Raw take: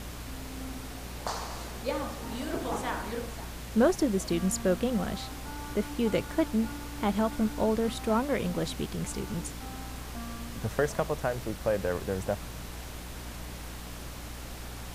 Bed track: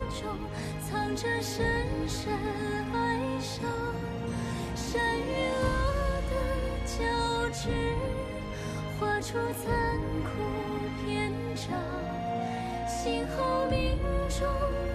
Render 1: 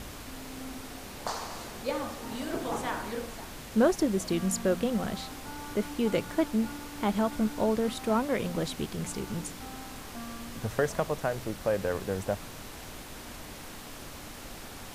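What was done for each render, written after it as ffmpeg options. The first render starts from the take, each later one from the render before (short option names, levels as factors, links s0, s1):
-af "bandreject=f=60:t=h:w=4,bandreject=f=120:t=h:w=4,bandreject=f=180:t=h:w=4"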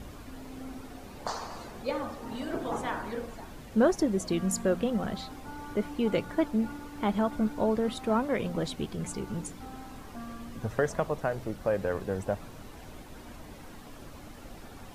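-af "afftdn=nr=10:nf=-44"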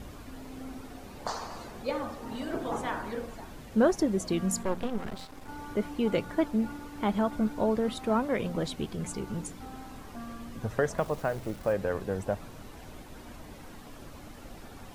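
-filter_complex "[0:a]asettb=1/sr,asplit=3[s0][s1][s2];[s0]atrim=end=4.634[s3];[s1]atrim=start=4.63:end=5.49,asetpts=PTS-STARTPTS,afade=t=in:d=0.004:c=qsin,afade=t=out:st=0.856:d=0.004:c=qsin,aeval=exprs='max(val(0),0)':c=same[s4];[s2]atrim=start=5.486[s5];[s3][s4]acrossfade=d=0.004:c1=hsin:c2=qsin[s6];[s6][s5]acrossfade=d=0.004:c1=qsin:c2=hsin,asettb=1/sr,asplit=3[s7][s8][s9];[s7]atrim=end=10.984[s10];[s8]atrim=start=10.98:end=11.73,asetpts=PTS-STARTPTS,afade=t=in:d=0.004:c=qsin,afade=t=out:st=0.746:d=0.004:c=qsin,acrusher=bits=9:dc=4:mix=0:aa=0.000001[s11];[s9]atrim=start=11.726[s12];[s10][s11]acrossfade=d=0.004:c1=hsin:c2=qsin[s13];[s13][s12]acrossfade=d=0.004:c1=qsin:c2=hsin"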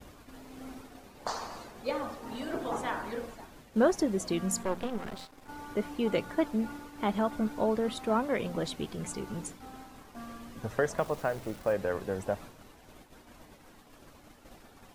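-af "agate=range=0.0224:threshold=0.0112:ratio=3:detection=peak,lowshelf=f=200:g=-6"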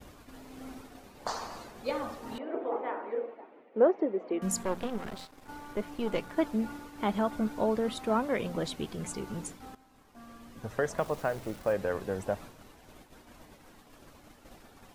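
-filter_complex "[0:a]asettb=1/sr,asplit=3[s0][s1][s2];[s0]atrim=end=2.384[s3];[s1]atrim=start=2.38:end=4.42,asetpts=PTS-STARTPTS,afade=t=in:d=0.004:c=qsin,afade=t=out:st=2.036:d=0.004:c=qsin,highpass=f=290:w=0.5412,highpass=f=290:w=1.3066,equalizer=f=470:t=q:w=4:g=6,equalizer=f=1100:t=q:w=4:g=-4,equalizer=f=1600:t=q:w=4:g=-9,lowpass=f=2100:w=0.5412,lowpass=f=2100:w=1.3066[s4];[s2]atrim=start=4.416[s5];[s3][s4]acrossfade=d=0.004:c1=hsin:c2=qsin[s6];[s6][s5]acrossfade=d=0.004:c1=qsin:c2=hsin,asettb=1/sr,asplit=3[s7][s8][s9];[s7]atrim=end=5.584[s10];[s8]atrim=start=5.58:end=6.37,asetpts=PTS-STARTPTS,afade=t=in:d=0.004:c=qsin,afade=t=out:st=0.786:d=0.004:c=qsin,aeval=exprs='if(lt(val(0),0),0.447*val(0),val(0))':c=same[s11];[s9]atrim=start=6.366[s12];[s10][s11]acrossfade=d=0.004:c1=hsin:c2=qsin[s13];[s13][s12]acrossfade=d=0.004:c1=qsin:c2=hsin,asplit=2[s14][s15];[s14]atrim=end=9.75,asetpts=PTS-STARTPTS,afade=t=out:st=9.746:d=0.004:c=hsin:silence=0.177828[s16];[s15]atrim=start=9.75,asetpts=PTS-STARTPTS,afade=t=in:d=1.35:silence=0.177828[s17];[s16][s17]concat=n=2:v=0:a=1"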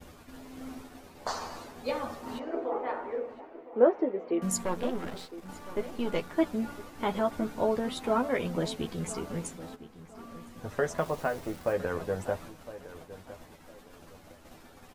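-filter_complex "[0:a]asplit=2[s0][s1];[s1]adelay=12,volume=0.562[s2];[s0][s2]amix=inputs=2:normalize=0,asplit=2[s3][s4];[s4]adelay=1010,lowpass=f=2400:p=1,volume=0.178,asplit=2[s5][s6];[s6]adelay=1010,lowpass=f=2400:p=1,volume=0.31,asplit=2[s7][s8];[s8]adelay=1010,lowpass=f=2400:p=1,volume=0.31[s9];[s3][s5][s7][s9]amix=inputs=4:normalize=0"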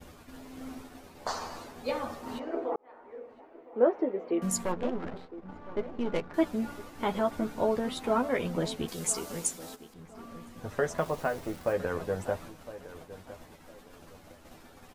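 -filter_complex "[0:a]asettb=1/sr,asplit=3[s0][s1][s2];[s0]atrim=end=4.724[s3];[s1]atrim=start=4.72:end=6.34,asetpts=PTS-STARTPTS,afade=t=in:d=0.004:c=qsin,afade=t=out:st=1.616:d=0.004:c=qsin,adynamicsmooth=sensitivity=5:basefreq=1400[s4];[s2]atrim=start=6.336[s5];[s3][s4]acrossfade=d=0.004:c1=hsin:c2=qsin[s6];[s6][s5]acrossfade=d=0.004:c1=qsin:c2=hsin,asettb=1/sr,asplit=3[s7][s8][s9];[s7]atrim=end=8.884[s10];[s8]atrim=start=8.88:end=9.94,asetpts=PTS-STARTPTS,afade=t=in:d=0.004:c=qsin,afade=t=out:st=1.056:d=0.004:c=qsin,bass=f=250:g=-7,treble=f=4000:g=12[s11];[s9]atrim=start=9.936[s12];[s10][s11]acrossfade=d=0.004:c1=hsin:c2=qsin[s13];[s13][s12]acrossfade=d=0.004:c1=qsin:c2=hsin,asplit=2[s14][s15];[s14]atrim=end=2.76,asetpts=PTS-STARTPTS,afade=t=out:st=2.756:d=0.004:c=hsin[s16];[s15]atrim=start=2.76,asetpts=PTS-STARTPTS,afade=t=in:d=1.38[s17];[s16][s17]concat=n=2:v=0:a=1"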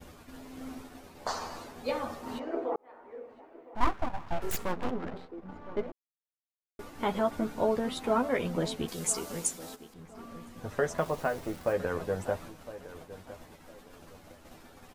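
-filter_complex "[0:a]asettb=1/sr,asplit=3[s0][s1][s2];[s0]atrim=end=3.754[s3];[s1]atrim=start=3.75:end=4.91,asetpts=PTS-STARTPTS,afade=t=in:d=0.004:c=qsin,afade=t=out:st=1.156:d=0.004:c=qsin,aeval=exprs='abs(val(0))':c=same[s4];[s2]atrim=start=4.906[s5];[s3][s4]acrossfade=d=0.004:c1=hsin:c2=qsin[s6];[s6][s5]acrossfade=d=0.004:c1=qsin:c2=hsin,asplit=3[s7][s8][s9];[s7]atrim=end=5.92,asetpts=PTS-STARTPTS,afade=t=out:st=5.916:d=0.004:c=hsin[s10];[s8]atrim=start=5.92:end=6.79,asetpts=PTS-STARTPTS,volume=0[s11];[s9]atrim=start=6.79,asetpts=PTS-STARTPTS,afade=t=in:d=0.004:c=hsin[s12];[s10][s11][s12]concat=n=3:v=0:a=1"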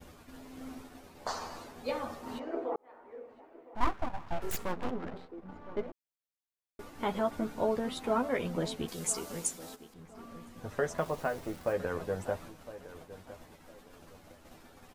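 -af "volume=0.75"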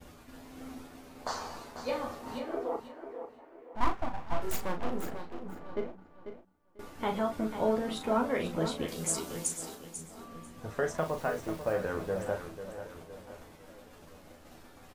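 -filter_complex "[0:a]asplit=2[s0][s1];[s1]adelay=37,volume=0.447[s2];[s0][s2]amix=inputs=2:normalize=0,aecho=1:1:493|986:0.316|0.0538"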